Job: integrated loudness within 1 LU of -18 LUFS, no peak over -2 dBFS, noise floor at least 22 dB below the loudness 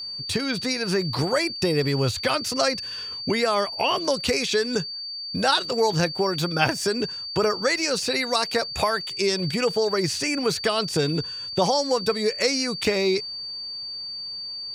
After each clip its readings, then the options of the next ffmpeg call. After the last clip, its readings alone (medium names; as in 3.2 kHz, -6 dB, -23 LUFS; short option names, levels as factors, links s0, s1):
steady tone 4.6 kHz; tone level -31 dBFS; loudness -24.0 LUFS; peak level -6.5 dBFS; loudness target -18.0 LUFS
-> -af "bandreject=f=4600:w=30"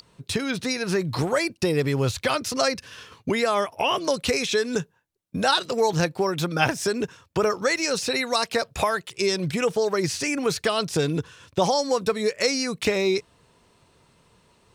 steady tone not found; loudness -24.5 LUFS; peak level -7.0 dBFS; loudness target -18.0 LUFS
-> -af "volume=2.11,alimiter=limit=0.794:level=0:latency=1"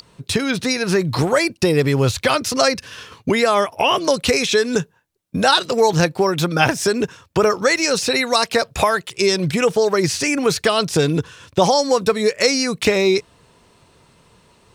loudness -18.0 LUFS; peak level -2.0 dBFS; noise floor -56 dBFS